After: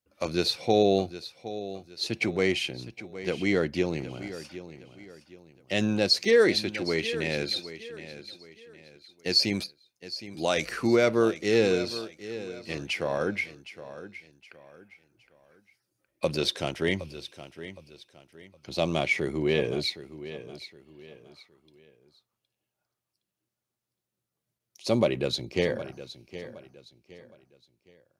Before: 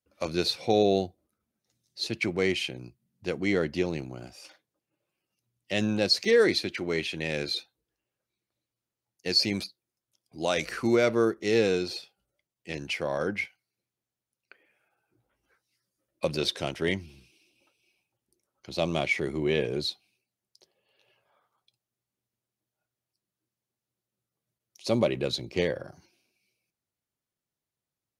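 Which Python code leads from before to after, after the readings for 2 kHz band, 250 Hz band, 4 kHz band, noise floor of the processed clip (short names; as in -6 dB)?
+1.0 dB, +1.0 dB, +1.0 dB, under -85 dBFS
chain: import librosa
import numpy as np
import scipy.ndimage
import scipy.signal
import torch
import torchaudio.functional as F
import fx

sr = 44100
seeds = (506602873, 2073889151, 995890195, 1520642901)

y = fx.echo_feedback(x, sr, ms=765, feedback_pct=34, wet_db=-14.0)
y = F.gain(torch.from_numpy(y), 1.0).numpy()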